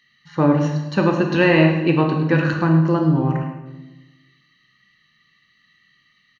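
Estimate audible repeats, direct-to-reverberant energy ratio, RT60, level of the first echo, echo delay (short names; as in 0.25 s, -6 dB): 1, 2.5 dB, 1.1 s, -12.0 dB, 0.106 s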